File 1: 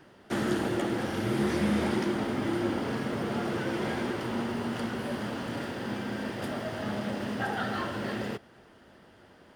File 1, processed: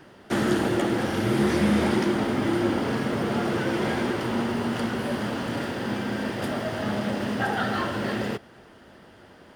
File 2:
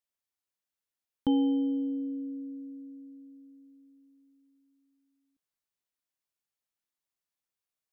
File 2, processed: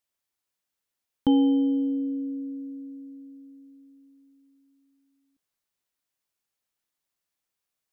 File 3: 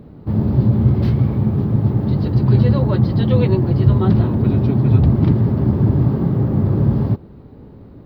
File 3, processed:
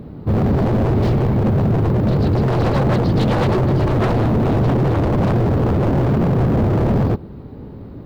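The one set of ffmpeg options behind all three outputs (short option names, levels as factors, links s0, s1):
-af "aeval=exprs='0.891*(cos(1*acos(clip(val(0)/0.891,-1,1)))-cos(1*PI/2))+0.158*(cos(5*acos(clip(val(0)/0.891,-1,1)))-cos(5*PI/2))':c=same,aeval=exprs='0.282*(abs(mod(val(0)/0.282+3,4)-2)-1)':c=same"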